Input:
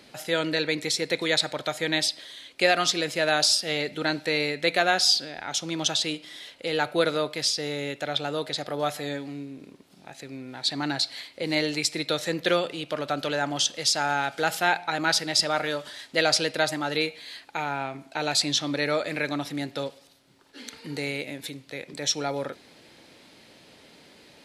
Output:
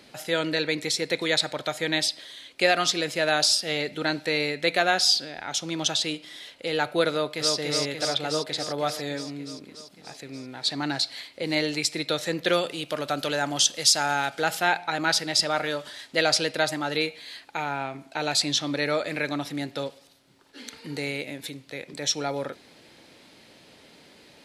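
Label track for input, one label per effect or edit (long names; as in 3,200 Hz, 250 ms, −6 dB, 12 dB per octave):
7.110000	7.560000	delay throw 290 ms, feedback 75%, level −3 dB
12.530000	14.300000	high-shelf EQ 6,300 Hz +10 dB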